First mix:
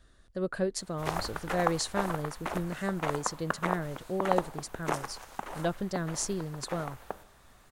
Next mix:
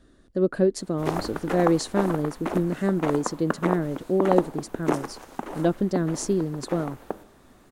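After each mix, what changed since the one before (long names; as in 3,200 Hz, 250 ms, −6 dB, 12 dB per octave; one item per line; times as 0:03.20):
master: add parametric band 290 Hz +14.5 dB 1.6 octaves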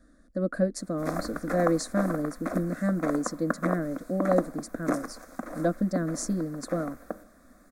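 master: add phaser with its sweep stopped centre 590 Hz, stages 8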